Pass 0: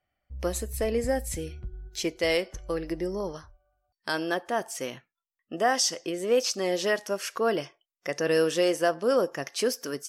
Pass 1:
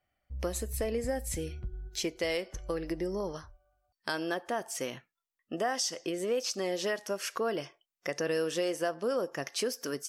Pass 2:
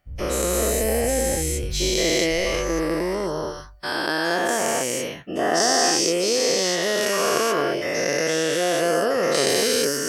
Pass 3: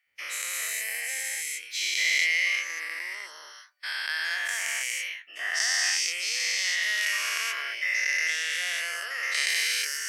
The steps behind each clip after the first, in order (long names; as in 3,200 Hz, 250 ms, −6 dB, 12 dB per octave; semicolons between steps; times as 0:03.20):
downward compressor 2.5 to 1, threshold −31 dBFS, peak gain reduction 8.5 dB
every bin's largest magnitude spread in time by 480 ms; level +3.5 dB
high-pass with resonance 2,100 Hz, resonance Q 4.2; level −6.5 dB